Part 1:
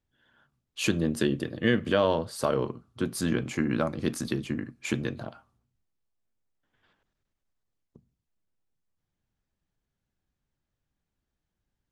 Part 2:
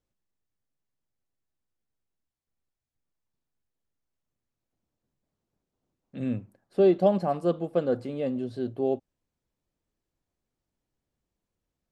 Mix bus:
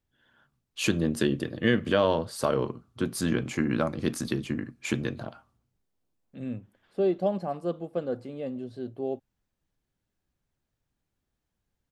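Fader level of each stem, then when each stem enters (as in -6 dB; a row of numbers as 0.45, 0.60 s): +0.5, -5.0 dB; 0.00, 0.20 s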